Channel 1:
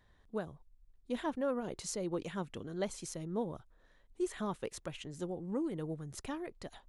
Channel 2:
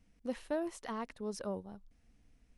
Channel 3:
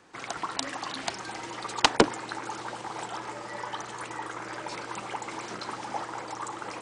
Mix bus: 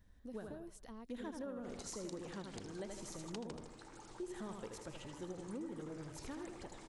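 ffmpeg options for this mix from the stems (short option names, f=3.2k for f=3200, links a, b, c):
-filter_complex "[0:a]equalizer=f=160:t=o:w=0.67:g=-7,equalizer=f=1.6k:t=o:w=0.67:g=6,equalizer=f=10k:t=o:w=0.67:g=-7,volume=-0.5dB,asplit=2[a][b];[b]volume=-6dB[c];[1:a]volume=0dB[d];[2:a]adelay=1500,volume=-6dB,asplit=2[e][f];[f]volume=-21.5dB[g];[d][e]amix=inputs=2:normalize=0,acompressor=threshold=-48dB:ratio=2,volume=0dB[h];[c][g]amix=inputs=2:normalize=0,aecho=0:1:79|158|237|316|395|474|553:1|0.48|0.23|0.111|0.0531|0.0255|0.0122[i];[a][h][i]amix=inputs=3:normalize=0,equalizer=f=1.5k:w=0.31:g=-11.5,acompressor=threshold=-41dB:ratio=5"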